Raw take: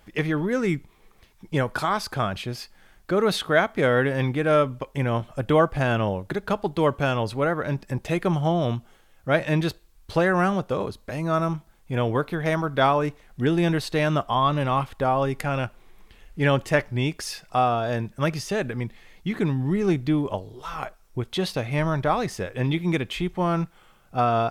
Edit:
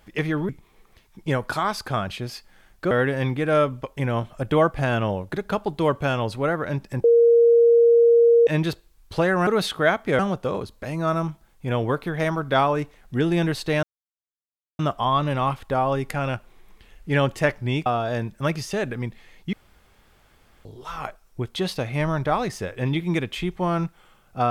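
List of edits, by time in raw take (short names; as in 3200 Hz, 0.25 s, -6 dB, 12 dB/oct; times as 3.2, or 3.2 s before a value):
0.49–0.75 cut
3.17–3.89 move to 10.45
8.02–9.45 bleep 468 Hz -11.5 dBFS
14.09 insert silence 0.96 s
17.16–17.64 cut
19.31–20.43 room tone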